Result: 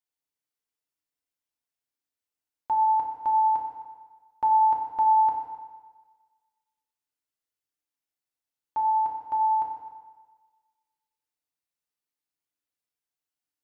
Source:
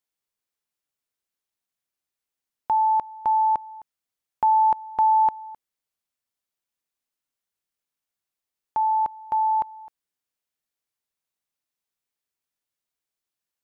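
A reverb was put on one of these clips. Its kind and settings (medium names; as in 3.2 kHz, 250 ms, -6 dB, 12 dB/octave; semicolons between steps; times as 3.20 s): FDN reverb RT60 1.4 s, low-frequency decay 0.9×, high-frequency decay 0.9×, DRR -1 dB; trim -8 dB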